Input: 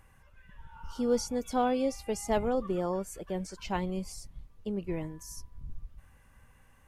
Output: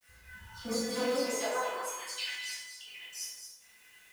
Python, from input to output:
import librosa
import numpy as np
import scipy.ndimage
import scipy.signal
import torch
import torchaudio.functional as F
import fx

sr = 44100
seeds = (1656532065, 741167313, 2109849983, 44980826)

p1 = fx.spec_dropout(x, sr, seeds[0], share_pct=26)
p2 = fx.graphic_eq(p1, sr, hz=(125, 250, 500, 1000, 2000, 4000), db=(-5, -3, -6, -7, 4, 5))
p3 = fx.stretch_grains(p2, sr, factor=0.6, grain_ms=23.0)
p4 = np.clip(p3, -10.0 ** (-40.0 / 20.0), 10.0 ** (-40.0 / 20.0))
p5 = p3 + F.gain(torch.from_numpy(p4), -9.0).numpy()
p6 = fx.comb_fb(p5, sr, f0_hz=500.0, decay_s=0.3, harmonics='all', damping=0.0, mix_pct=90)
p7 = fx.fold_sine(p6, sr, drive_db=7, ceiling_db=-37.0)
p8 = fx.dispersion(p7, sr, late='lows', ms=61.0, hz=1200.0)
p9 = fx.filter_sweep_highpass(p8, sr, from_hz=64.0, to_hz=2500.0, start_s=0.23, end_s=2.21, q=1.6)
p10 = fx.quant_companded(p9, sr, bits=6)
p11 = p10 + 10.0 ** (-8.0 / 20.0) * np.pad(p10, (int(219 * sr / 1000.0), 0))[:len(p10)]
p12 = fx.rev_plate(p11, sr, seeds[1], rt60_s=0.98, hf_ratio=0.65, predelay_ms=0, drr_db=-7.0)
y = F.gain(torch.from_numpy(p12), 1.5).numpy()